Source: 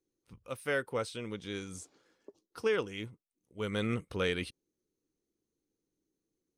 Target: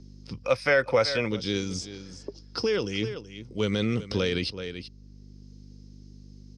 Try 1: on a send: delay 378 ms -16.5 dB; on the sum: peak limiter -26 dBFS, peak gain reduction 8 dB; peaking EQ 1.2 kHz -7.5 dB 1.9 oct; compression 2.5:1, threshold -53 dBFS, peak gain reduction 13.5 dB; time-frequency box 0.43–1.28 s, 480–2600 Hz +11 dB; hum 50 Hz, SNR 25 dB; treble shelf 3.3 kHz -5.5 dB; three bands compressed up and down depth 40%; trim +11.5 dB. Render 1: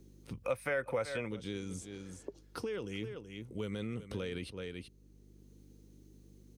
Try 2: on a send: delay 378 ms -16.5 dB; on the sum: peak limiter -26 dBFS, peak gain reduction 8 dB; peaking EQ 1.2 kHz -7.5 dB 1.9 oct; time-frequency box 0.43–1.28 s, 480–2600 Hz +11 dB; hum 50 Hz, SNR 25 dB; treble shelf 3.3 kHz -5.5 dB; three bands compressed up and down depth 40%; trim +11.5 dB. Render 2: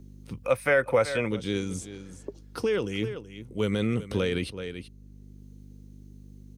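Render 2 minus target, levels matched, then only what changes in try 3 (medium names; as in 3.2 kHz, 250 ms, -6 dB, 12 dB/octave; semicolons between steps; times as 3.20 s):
4 kHz band -5.5 dB
add after hum: resonant low-pass 5.1 kHz, resonance Q 9.1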